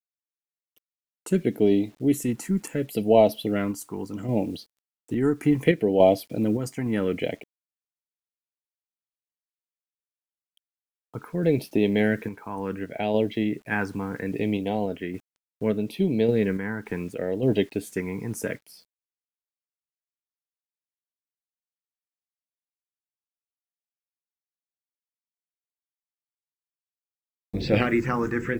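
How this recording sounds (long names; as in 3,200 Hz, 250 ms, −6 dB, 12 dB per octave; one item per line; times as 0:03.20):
phaser sweep stages 4, 0.7 Hz, lowest notch 580–1,300 Hz
a quantiser's noise floor 10 bits, dither none
sample-and-hold tremolo 3.5 Hz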